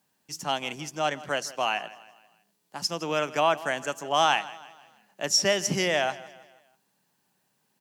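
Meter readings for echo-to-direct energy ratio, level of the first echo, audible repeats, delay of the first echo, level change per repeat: -17.0 dB, -18.0 dB, 3, 0.162 s, -7.0 dB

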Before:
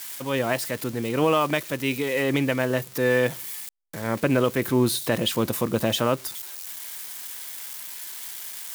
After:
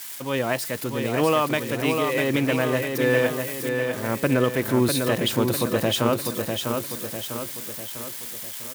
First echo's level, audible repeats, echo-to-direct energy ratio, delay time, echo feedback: -5.0 dB, 5, -4.0 dB, 0.649 s, 50%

